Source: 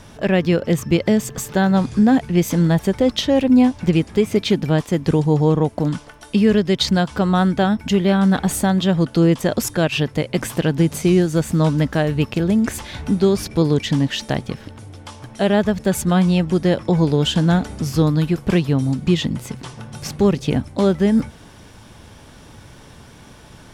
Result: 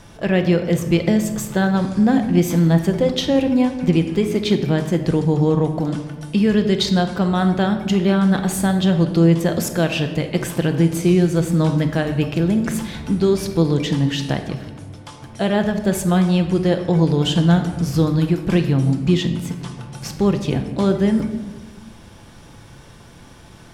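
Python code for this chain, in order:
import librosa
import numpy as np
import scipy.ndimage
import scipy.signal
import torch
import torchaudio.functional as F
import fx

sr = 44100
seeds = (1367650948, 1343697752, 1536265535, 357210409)

y = fx.room_shoebox(x, sr, seeds[0], volume_m3=850.0, walls='mixed', distance_m=0.78)
y = y * 10.0 ** (-2.0 / 20.0)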